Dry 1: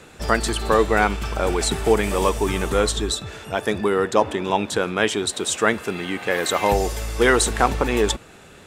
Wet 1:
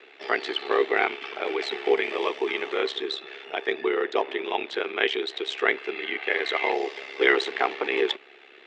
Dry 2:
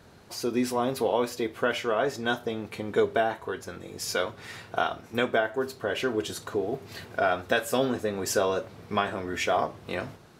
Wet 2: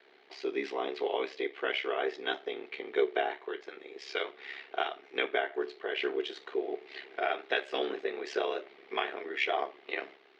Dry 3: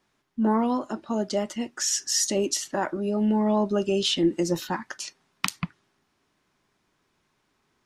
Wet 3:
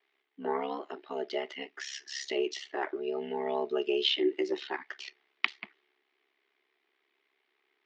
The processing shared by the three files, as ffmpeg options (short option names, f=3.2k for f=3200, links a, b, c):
-af "aeval=exprs='val(0)*sin(2*PI*34*n/s)':c=same,highpass=f=390:w=0.5412,highpass=f=390:w=1.3066,equalizer=f=390:t=q:w=4:g=6,equalizer=f=550:t=q:w=4:g=-10,equalizer=f=990:t=q:w=4:g=-7,equalizer=f=1.4k:t=q:w=4:g=-5,equalizer=f=2.1k:t=q:w=4:g=7,equalizer=f=3.1k:t=q:w=4:g=3,lowpass=f=3.9k:w=0.5412,lowpass=f=3.9k:w=1.3066"